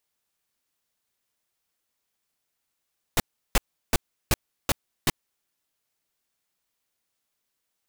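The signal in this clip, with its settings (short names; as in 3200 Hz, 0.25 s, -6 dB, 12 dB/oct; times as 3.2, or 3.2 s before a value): noise bursts pink, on 0.03 s, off 0.35 s, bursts 6, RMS -19.5 dBFS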